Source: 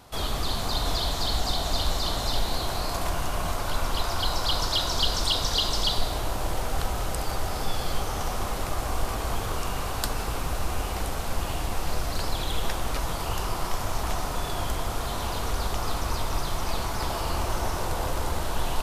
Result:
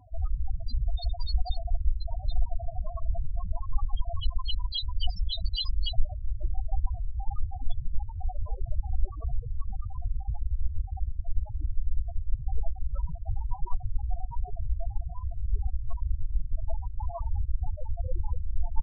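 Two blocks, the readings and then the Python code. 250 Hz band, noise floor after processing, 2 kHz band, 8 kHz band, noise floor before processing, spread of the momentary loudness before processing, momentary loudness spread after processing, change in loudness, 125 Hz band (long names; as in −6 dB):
−20.5 dB, −41 dBFS, below −40 dB, below −40 dB, −31 dBFS, 6 LU, 5 LU, −6.0 dB, −1.0 dB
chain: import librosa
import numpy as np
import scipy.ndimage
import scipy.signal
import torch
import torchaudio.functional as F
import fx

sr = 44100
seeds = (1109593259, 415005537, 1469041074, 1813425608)

y = fx.spec_topn(x, sr, count=4)
y = fx.dereverb_blind(y, sr, rt60_s=1.2)
y = F.gain(torch.from_numpy(y), 4.5).numpy()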